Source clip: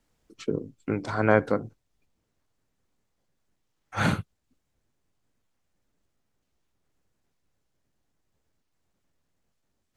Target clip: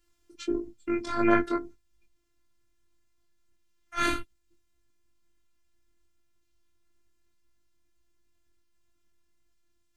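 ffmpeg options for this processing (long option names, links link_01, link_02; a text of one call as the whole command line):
ffmpeg -i in.wav -af "flanger=delay=18:depth=4.5:speed=1.6,equalizer=frequency=650:width=1.3:gain=-10,afftfilt=real='hypot(re,im)*cos(PI*b)':imag='0':win_size=512:overlap=0.75,volume=8.5dB" out.wav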